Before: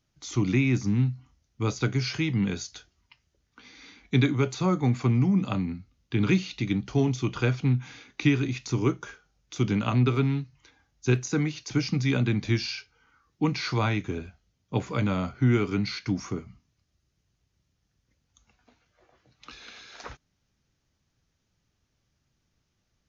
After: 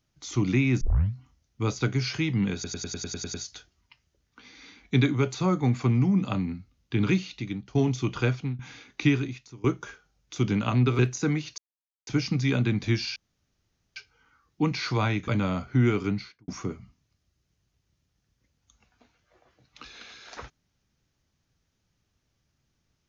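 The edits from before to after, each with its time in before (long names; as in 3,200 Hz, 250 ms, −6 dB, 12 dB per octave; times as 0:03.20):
0:00.81: tape start 0.33 s
0:02.54: stutter 0.10 s, 9 plays
0:06.20–0:06.95: fade out, to −12 dB
0:07.47–0:07.79: fade out, to −15.5 dB
0:08.35–0:08.84: fade out quadratic, to −21.5 dB
0:10.19–0:11.09: remove
0:11.68: splice in silence 0.49 s
0:12.77: splice in room tone 0.80 s
0:14.09–0:14.95: remove
0:15.69–0:16.15: fade out and dull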